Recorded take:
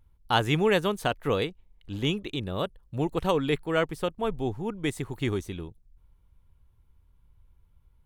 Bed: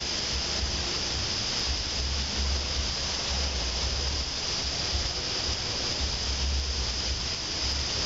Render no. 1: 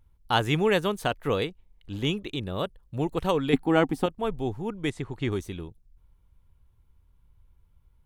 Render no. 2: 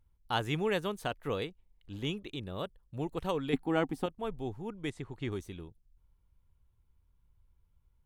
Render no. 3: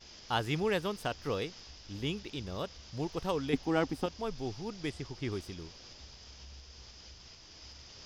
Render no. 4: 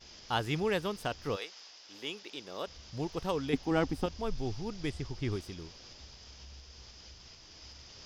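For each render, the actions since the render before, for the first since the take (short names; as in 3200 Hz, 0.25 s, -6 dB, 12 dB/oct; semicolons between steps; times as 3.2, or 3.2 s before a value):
3.53–4.06 small resonant body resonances 260/770 Hz, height 17 dB; 4.9–5.32 air absorption 77 m
gain -8 dB
add bed -22.5 dB
1.35–2.66 HPF 750 Hz -> 310 Hz; 3.71–5.36 low shelf 92 Hz +11 dB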